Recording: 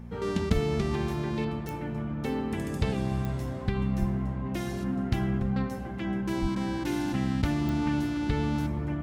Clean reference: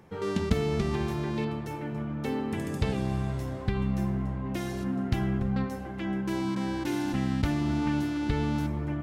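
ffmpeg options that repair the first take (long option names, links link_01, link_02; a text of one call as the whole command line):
ffmpeg -i in.wav -filter_complex "[0:a]adeclick=threshold=4,bandreject=frequency=58.6:width_type=h:width=4,bandreject=frequency=117.2:width_type=h:width=4,bandreject=frequency=175.8:width_type=h:width=4,bandreject=frequency=234.4:width_type=h:width=4,asplit=3[link_01][link_02][link_03];[link_01]afade=type=out:start_time=0.53:duration=0.02[link_04];[link_02]highpass=frequency=140:width=0.5412,highpass=frequency=140:width=1.3066,afade=type=in:start_time=0.53:duration=0.02,afade=type=out:start_time=0.65:duration=0.02[link_05];[link_03]afade=type=in:start_time=0.65:duration=0.02[link_06];[link_04][link_05][link_06]amix=inputs=3:normalize=0,asplit=3[link_07][link_08][link_09];[link_07]afade=type=out:start_time=3.99:duration=0.02[link_10];[link_08]highpass=frequency=140:width=0.5412,highpass=frequency=140:width=1.3066,afade=type=in:start_time=3.99:duration=0.02,afade=type=out:start_time=4.11:duration=0.02[link_11];[link_09]afade=type=in:start_time=4.11:duration=0.02[link_12];[link_10][link_11][link_12]amix=inputs=3:normalize=0,asplit=3[link_13][link_14][link_15];[link_13]afade=type=out:start_time=6.41:duration=0.02[link_16];[link_14]highpass=frequency=140:width=0.5412,highpass=frequency=140:width=1.3066,afade=type=in:start_time=6.41:duration=0.02,afade=type=out:start_time=6.53:duration=0.02[link_17];[link_15]afade=type=in:start_time=6.53:duration=0.02[link_18];[link_16][link_17][link_18]amix=inputs=3:normalize=0" out.wav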